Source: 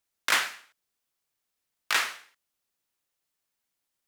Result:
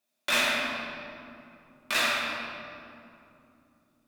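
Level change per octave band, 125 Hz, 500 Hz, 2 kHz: n/a, +10.5 dB, +1.5 dB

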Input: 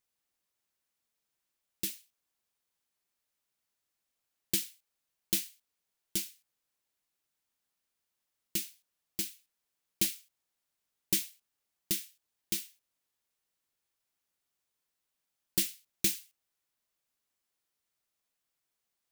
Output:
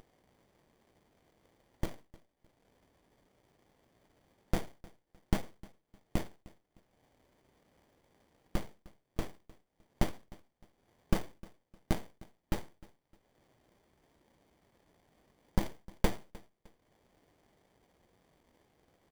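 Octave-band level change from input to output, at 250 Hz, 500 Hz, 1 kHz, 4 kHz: +4.5 dB, +8.5 dB, n/a, -11.0 dB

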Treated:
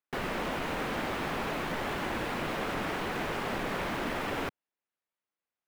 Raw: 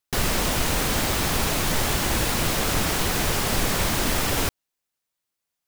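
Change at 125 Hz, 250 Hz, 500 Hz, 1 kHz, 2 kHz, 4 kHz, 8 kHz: -13.5, -7.5, -6.0, -6.0, -7.0, -14.0, -23.5 dB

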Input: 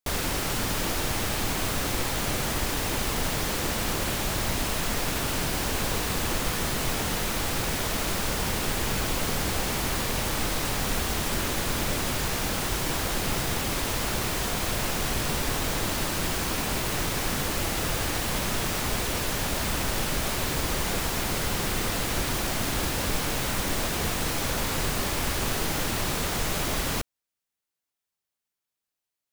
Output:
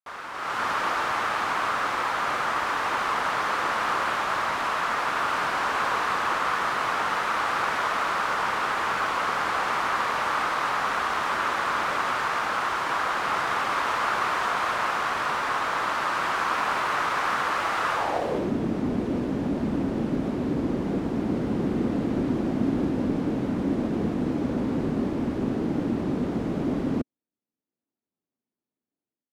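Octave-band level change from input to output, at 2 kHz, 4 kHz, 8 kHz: +4.0, -5.5, -14.0 dB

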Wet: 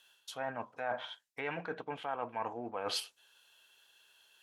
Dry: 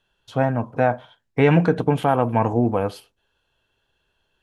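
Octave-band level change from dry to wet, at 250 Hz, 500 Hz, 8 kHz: -26.0 dB, -19.0 dB, n/a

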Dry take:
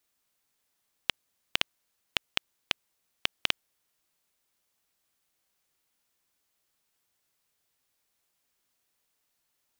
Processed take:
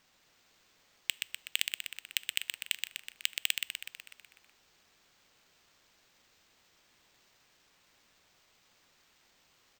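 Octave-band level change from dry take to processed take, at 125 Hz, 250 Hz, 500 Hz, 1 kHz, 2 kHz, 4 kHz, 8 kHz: under -15 dB, under -15 dB, -16.5 dB, -16.0 dB, -1.5 dB, -2.0 dB, +8.5 dB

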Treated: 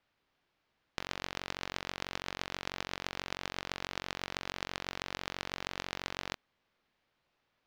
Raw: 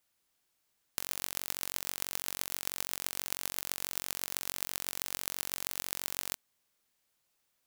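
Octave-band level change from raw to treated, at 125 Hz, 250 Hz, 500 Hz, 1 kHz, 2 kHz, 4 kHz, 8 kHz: +6.5, +6.0, +6.0, +5.5, +4.0, 0.0, -13.0 dB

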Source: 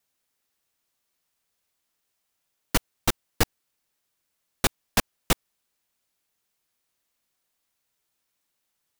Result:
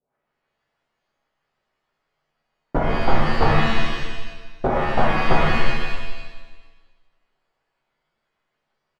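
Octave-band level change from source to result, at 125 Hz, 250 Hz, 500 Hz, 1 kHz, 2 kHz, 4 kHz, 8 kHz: +11.0, +9.0, +12.0, +13.0, +9.5, +2.0, -16.0 dB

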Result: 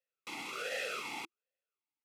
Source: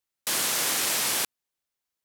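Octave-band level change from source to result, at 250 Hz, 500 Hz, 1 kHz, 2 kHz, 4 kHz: -10.5, -4.5, -9.5, -8.5, -16.0 dB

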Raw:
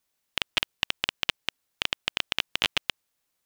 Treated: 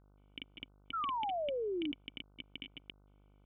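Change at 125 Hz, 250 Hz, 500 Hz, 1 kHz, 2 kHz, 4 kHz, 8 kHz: -12.0 dB, +3.0 dB, +5.0 dB, +1.0 dB, -21.5 dB, -20.0 dB, under -40 dB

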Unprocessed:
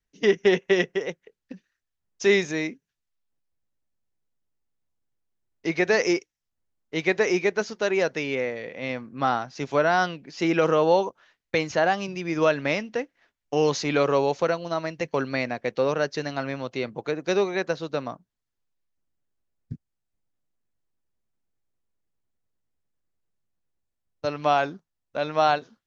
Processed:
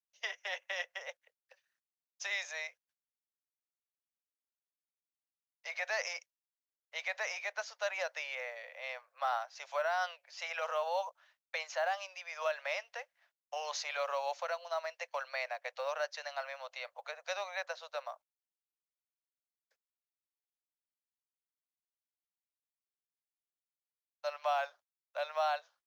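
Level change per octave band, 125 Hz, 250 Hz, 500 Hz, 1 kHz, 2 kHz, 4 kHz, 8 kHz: under -40 dB, under -40 dB, -16.0 dB, -10.5 dB, -10.0 dB, -9.5 dB, n/a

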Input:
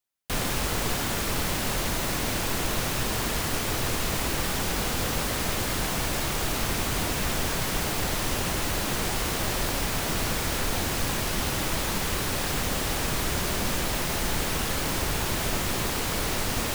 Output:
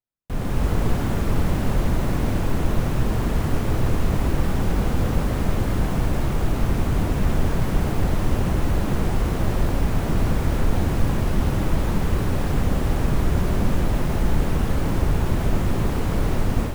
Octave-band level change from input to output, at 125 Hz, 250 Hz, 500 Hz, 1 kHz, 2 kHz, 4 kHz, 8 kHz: +10.5, +7.5, +3.5, 0.0, -4.0, -9.0, -11.0 dB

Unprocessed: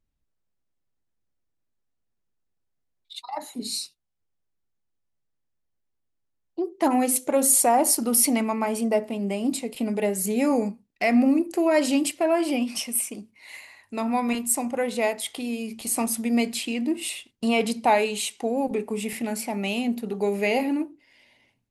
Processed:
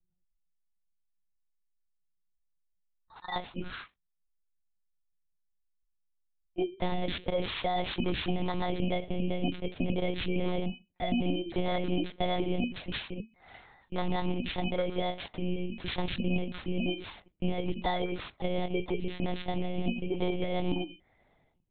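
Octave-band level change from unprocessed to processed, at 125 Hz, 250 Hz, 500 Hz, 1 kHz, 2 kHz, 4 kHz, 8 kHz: n/a, -8.5 dB, -8.5 dB, -9.0 dB, -7.5 dB, -4.0 dB, under -40 dB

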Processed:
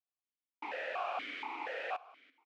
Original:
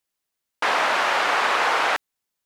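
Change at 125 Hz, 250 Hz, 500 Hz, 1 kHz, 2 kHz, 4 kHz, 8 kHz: n/a, -15.5 dB, -15.0 dB, -19.0 dB, -20.0 dB, -22.0 dB, under -30 dB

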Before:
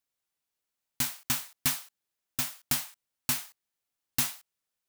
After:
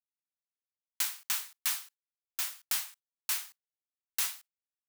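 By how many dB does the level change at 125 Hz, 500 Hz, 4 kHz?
under -35 dB, under -10 dB, -2.0 dB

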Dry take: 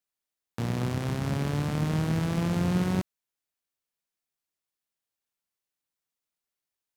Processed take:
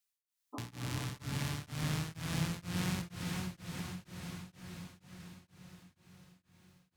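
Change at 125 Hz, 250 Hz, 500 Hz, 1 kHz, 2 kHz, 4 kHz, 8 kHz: -9.0, -10.5, -13.5, -8.0, -3.5, -0.5, +0.5 dB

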